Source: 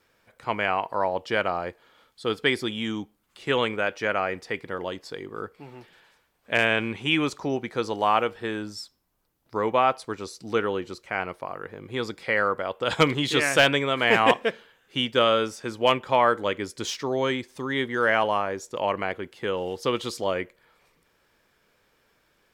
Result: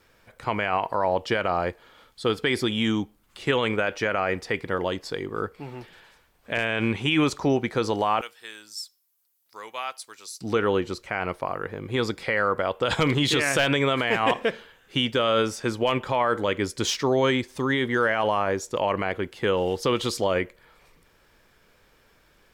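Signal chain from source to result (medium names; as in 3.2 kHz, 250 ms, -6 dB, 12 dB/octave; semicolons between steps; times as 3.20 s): 8.21–10.41 s: differentiator; peak limiter -17.5 dBFS, peak gain reduction 10 dB; bass shelf 71 Hz +11 dB; trim +5 dB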